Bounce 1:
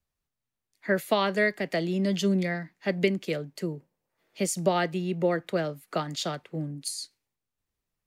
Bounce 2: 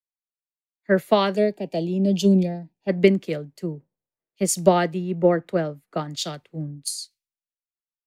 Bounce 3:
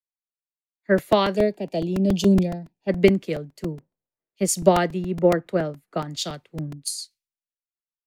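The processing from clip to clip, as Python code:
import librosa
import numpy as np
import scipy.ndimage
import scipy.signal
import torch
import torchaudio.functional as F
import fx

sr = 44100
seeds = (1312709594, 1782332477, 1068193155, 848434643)

y1 = fx.spec_box(x, sr, start_s=1.36, length_s=1.53, low_hz=980.0, high_hz=2300.0, gain_db=-16)
y1 = fx.tilt_shelf(y1, sr, db=3.5, hz=970.0)
y1 = fx.band_widen(y1, sr, depth_pct=100)
y1 = F.gain(torch.from_numpy(y1), 2.5).numpy()
y2 = fx.buffer_crackle(y1, sr, first_s=0.98, period_s=0.14, block=128, kind='repeat')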